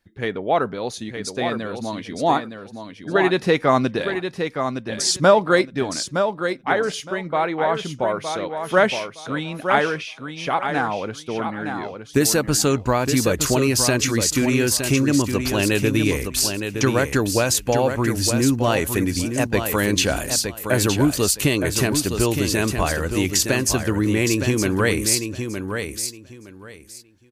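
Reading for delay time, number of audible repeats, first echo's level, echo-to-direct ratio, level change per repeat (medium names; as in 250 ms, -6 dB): 915 ms, 3, -7.0 dB, -7.0 dB, -14.0 dB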